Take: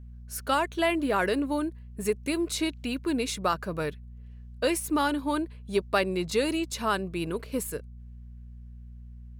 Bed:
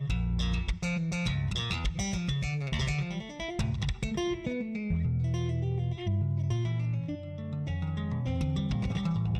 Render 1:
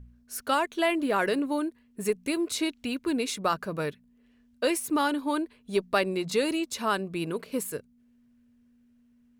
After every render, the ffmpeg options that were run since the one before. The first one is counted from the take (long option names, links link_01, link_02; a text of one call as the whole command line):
ffmpeg -i in.wav -af "bandreject=frequency=60:width_type=h:width=4,bandreject=frequency=120:width_type=h:width=4,bandreject=frequency=180:width_type=h:width=4" out.wav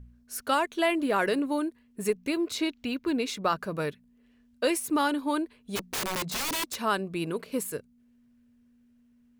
ffmpeg -i in.wav -filter_complex "[0:a]asettb=1/sr,asplit=3[link_01][link_02][link_03];[link_01]atrim=end=2.124[link_04];[link_02]atrim=start=2.12:end=3.56,asetpts=PTS-STARTPTS,afade=type=in:duration=0.004:curve=qsin,afade=type=out:start_time=1.436:duration=0.004:curve=qsin,equalizer=frequency=9500:width_type=o:width=0.8:gain=-9[link_05];[link_03]atrim=start=3.556[link_06];[link_04][link_05]acrossfade=duration=0.004:curve1=hsin:curve2=qsin[link_07];[link_07][link_06]acrossfade=duration=0.004:curve1=qsin:curve2=hsin,asplit=3[link_08][link_09][link_10];[link_08]afade=type=out:start_time=5.75:duration=0.02[link_11];[link_09]aeval=exprs='(mod(20*val(0)+1,2)-1)/20':channel_layout=same,afade=type=in:start_time=5.75:duration=0.02,afade=type=out:start_time=6.81:duration=0.02[link_12];[link_10]afade=type=in:start_time=6.81:duration=0.02[link_13];[link_11][link_12][link_13]amix=inputs=3:normalize=0" out.wav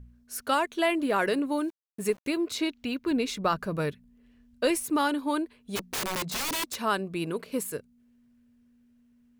ffmpeg -i in.wav -filter_complex "[0:a]asettb=1/sr,asplit=3[link_01][link_02][link_03];[link_01]atrim=end=1.574[link_04];[link_02]atrim=start=1.57:end=2.32,asetpts=PTS-STARTPTS,afade=type=in:duration=0.004:curve=qsin,afade=type=out:start_time=0.746:duration=0.004:curve=qsin,aeval=exprs='val(0)*gte(abs(val(0)),0.00355)':channel_layout=same[link_05];[link_03]atrim=start=2.316[link_06];[link_04][link_05]acrossfade=duration=0.004:curve1=hsin:curve2=qsin[link_07];[link_07][link_06]acrossfade=duration=0.004:curve1=qsin:curve2=hsin,asettb=1/sr,asplit=3[link_08][link_09][link_10];[link_08]atrim=end=3.114[link_11];[link_09]atrim=start=3.11:end=4.84,asetpts=PTS-STARTPTS,afade=type=in:duration=0.004:curve=qsin,afade=type=out:start_time=1.726:duration=0.004:curve=qsin,lowshelf=frequency=130:gain=10.5[link_12];[link_10]atrim=start=4.836[link_13];[link_11][link_12]acrossfade=duration=0.004:curve1=hsin:curve2=qsin[link_14];[link_14][link_13]acrossfade=duration=0.004:curve1=qsin:curve2=hsin" out.wav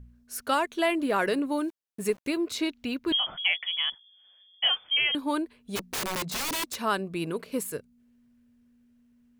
ffmpeg -i in.wav -filter_complex "[0:a]asettb=1/sr,asplit=3[link_01][link_02][link_03];[link_01]atrim=end=3.124[link_04];[link_02]atrim=start=3.12:end=5.15,asetpts=PTS-STARTPTS,afade=type=in:duration=0.004:curve=qsin,afade=type=out:start_time=2.026:duration=0.004:curve=qsin,lowpass=frequency=3000:width_type=q:width=0.5098,lowpass=frequency=3000:width_type=q:width=0.6013,lowpass=frequency=3000:width_type=q:width=0.9,lowpass=frequency=3000:width_type=q:width=2.563,afreqshift=-3500[link_05];[link_03]atrim=start=5.146[link_06];[link_04][link_05]acrossfade=duration=0.004:curve1=hsin:curve2=qsin[link_07];[link_07][link_06]acrossfade=duration=0.004:curve1=qsin:curve2=hsin" out.wav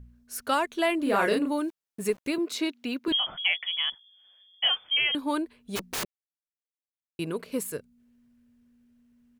ffmpeg -i in.wav -filter_complex "[0:a]asplit=3[link_01][link_02][link_03];[link_01]afade=type=out:start_time=1.05:duration=0.02[link_04];[link_02]asplit=2[link_05][link_06];[link_06]adelay=34,volume=-2.5dB[link_07];[link_05][link_07]amix=inputs=2:normalize=0,afade=type=in:start_time=1.05:duration=0.02,afade=type=out:start_time=1.5:duration=0.02[link_08];[link_03]afade=type=in:start_time=1.5:duration=0.02[link_09];[link_04][link_08][link_09]amix=inputs=3:normalize=0,asettb=1/sr,asplit=3[link_10][link_11][link_12];[link_10]atrim=end=2.384[link_13];[link_11]atrim=start=2.38:end=3.08,asetpts=PTS-STARTPTS,afade=type=in:duration=0.004:curve=qsin,afade=type=out:start_time=0.696:duration=0.004:curve=qsin,highpass=frequency=170:width=0.5412,highpass=frequency=170:width=1.3066[link_14];[link_12]atrim=start=3.076[link_15];[link_13][link_14]acrossfade=duration=0.004:curve1=hsin:curve2=qsin[link_16];[link_16][link_15]acrossfade=duration=0.004:curve1=qsin:curve2=hsin,asplit=3[link_17][link_18][link_19];[link_17]atrim=end=6.05,asetpts=PTS-STARTPTS,afade=type=out:start_time=6.046:duration=0.004:curve=hsin[link_20];[link_18]atrim=start=6.05:end=7.19,asetpts=PTS-STARTPTS,volume=0[link_21];[link_19]atrim=start=7.19,asetpts=PTS-STARTPTS,afade=type=in:duration=0.004:curve=hsin[link_22];[link_20][link_21][link_22]concat=n=3:v=0:a=1" out.wav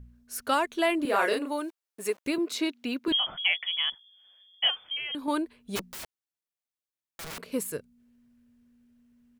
ffmpeg -i in.wav -filter_complex "[0:a]asettb=1/sr,asplit=3[link_01][link_02][link_03];[link_01]atrim=end=1.054[link_04];[link_02]atrim=start=1.05:end=2.25,asetpts=PTS-STARTPTS,afade=type=in:duration=0.004:curve=qsin,afade=type=out:start_time=1.196:duration=0.004:curve=qsin,highpass=390[link_05];[link_03]atrim=start=2.246[link_06];[link_04][link_05]acrossfade=duration=0.004:curve1=hsin:curve2=qsin[link_07];[link_07][link_06]acrossfade=duration=0.004:curve1=qsin:curve2=hsin,asettb=1/sr,asplit=3[link_08][link_09][link_10];[link_08]atrim=end=4.704[link_11];[link_09]atrim=start=4.7:end=5.28,asetpts=PTS-STARTPTS,afade=type=in:duration=0.004:curve=qsin,afade=type=out:start_time=0.576:duration=0.004:curve=qsin,acompressor=threshold=-31dB:ratio=5:attack=3.2:release=140:knee=1:detection=peak[link_12];[link_10]atrim=start=5.276[link_13];[link_11][link_12]acrossfade=duration=0.004:curve1=hsin:curve2=qsin[link_14];[link_14][link_13]acrossfade=duration=0.004:curve1=qsin:curve2=hsin,asettb=1/sr,asplit=3[link_15][link_16][link_17];[link_15]atrim=end=5.894[link_18];[link_16]atrim=start=5.89:end=7.39,asetpts=PTS-STARTPTS,afade=type=in:duration=0.004:curve=qsin,afade=type=out:start_time=1.496:duration=0.004:curve=qsin,aeval=exprs='(mod(53.1*val(0)+1,2)-1)/53.1':channel_layout=same[link_19];[link_17]atrim=start=7.386[link_20];[link_18][link_19]acrossfade=duration=0.004:curve1=hsin:curve2=qsin[link_21];[link_21][link_20]acrossfade=duration=0.004:curve1=qsin:curve2=hsin" out.wav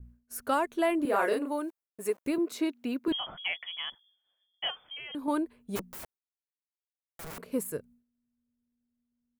ffmpeg -i in.wav -af "agate=range=-33dB:threshold=-51dB:ratio=3:detection=peak,equalizer=frequency=3900:width_type=o:width=2.2:gain=-10" out.wav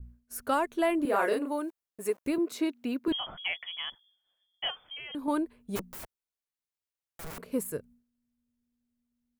ffmpeg -i in.wav -af "lowshelf=frequency=69:gain=6.5" out.wav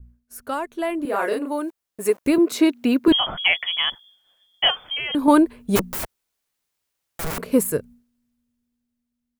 ffmpeg -i in.wav -af "dynaudnorm=framelen=340:gausssize=11:maxgain=16dB" out.wav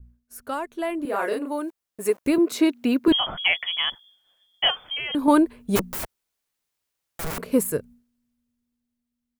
ffmpeg -i in.wav -af "volume=-2.5dB" out.wav